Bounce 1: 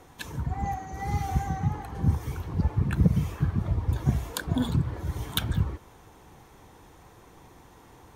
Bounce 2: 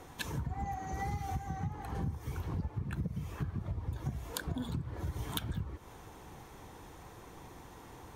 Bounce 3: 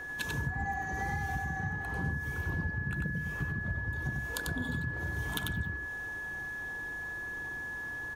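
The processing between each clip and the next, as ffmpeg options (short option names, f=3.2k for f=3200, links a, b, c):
-af "acompressor=threshold=-34dB:ratio=12,volume=1dB"
-af "aeval=exprs='val(0)+0.0112*sin(2*PI*1700*n/s)':c=same,aecho=1:1:94:0.668"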